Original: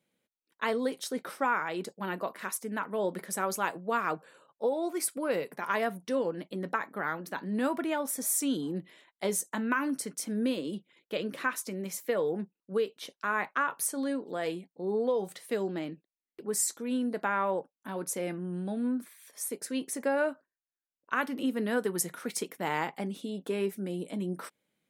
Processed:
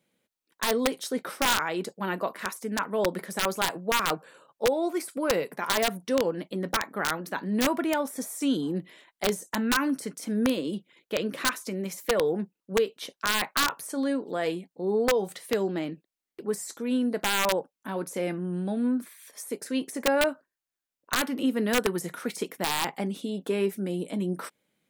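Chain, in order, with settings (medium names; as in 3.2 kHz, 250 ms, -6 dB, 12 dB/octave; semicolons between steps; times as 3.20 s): de-esser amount 75%; integer overflow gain 20 dB; trim +4.5 dB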